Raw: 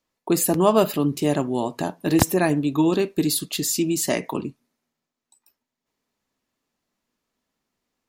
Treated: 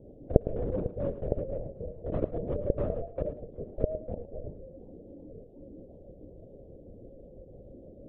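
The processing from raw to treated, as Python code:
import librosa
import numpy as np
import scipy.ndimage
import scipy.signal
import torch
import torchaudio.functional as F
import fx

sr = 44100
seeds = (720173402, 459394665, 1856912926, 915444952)

p1 = fx.delta_mod(x, sr, bps=16000, step_db=-30.0)
p2 = fx.rotary(p1, sr, hz=7.0)
p3 = scipy.signal.sosfilt(scipy.signal.cheby2(4, 80, [1000.0, 2400.0], 'bandstop', fs=sr, output='sos'), p2)
p4 = p3 * np.sin(2.0 * np.pi * 290.0 * np.arange(len(p3)) / sr)
p5 = 10.0 ** (-23.0 / 20.0) * (np.abs((p4 / 10.0 ** (-23.0 / 20.0) + 3.0) % 4.0 - 2.0) - 1.0)
p6 = p4 + (p5 * 10.0 ** (-8.0 / 20.0))
p7 = fx.lpc_vocoder(p6, sr, seeds[0], excitation='whisper', order=16)
p8 = p7 + fx.echo_single(p7, sr, ms=109, db=-13.0, dry=0)
p9 = fx.echo_warbled(p8, sr, ms=381, feedback_pct=53, rate_hz=2.8, cents=174, wet_db=-24.0)
y = p9 * 10.0 ** (-5.0 / 20.0)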